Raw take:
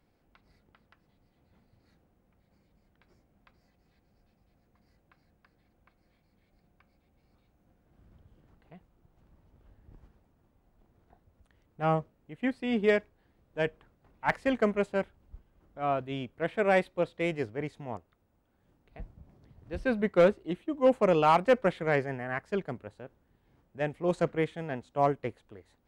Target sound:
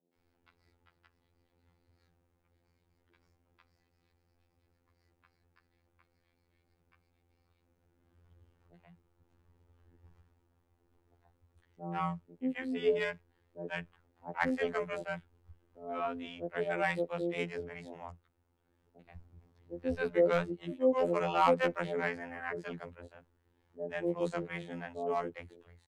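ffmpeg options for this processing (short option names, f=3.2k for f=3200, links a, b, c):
-filter_complex "[0:a]afftfilt=real='hypot(re,im)*cos(PI*b)':imag='0':win_size=2048:overlap=0.75,acrossover=split=190|600[a][b][c];[c]adelay=130[d];[a]adelay=160[e];[e][b][d]amix=inputs=3:normalize=0"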